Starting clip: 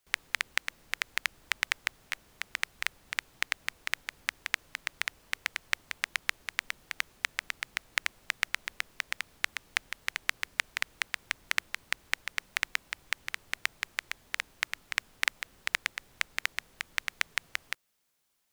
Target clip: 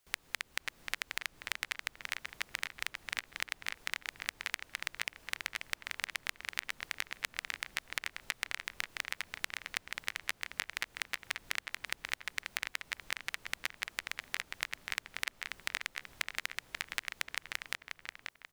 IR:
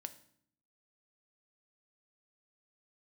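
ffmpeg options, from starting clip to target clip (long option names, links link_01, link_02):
-filter_complex "[0:a]acompressor=threshold=-33dB:ratio=6,asplit=2[link_01][link_02];[link_02]adelay=536,lowpass=frequency=4300:poles=1,volume=-4.5dB,asplit=2[link_03][link_04];[link_04]adelay=536,lowpass=frequency=4300:poles=1,volume=0.45,asplit=2[link_05][link_06];[link_06]adelay=536,lowpass=frequency=4300:poles=1,volume=0.45,asplit=2[link_07][link_08];[link_08]adelay=536,lowpass=frequency=4300:poles=1,volume=0.45,asplit=2[link_09][link_10];[link_10]adelay=536,lowpass=frequency=4300:poles=1,volume=0.45,asplit=2[link_11][link_12];[link_12]adelay=536,lowpass=frequency=4300:poles=1,volume=0.45[link_13];[link_01][link_03][link_05][link_07][link_09][link_11][link_13]amix=inputs=7:normalize=0,volume=1dB"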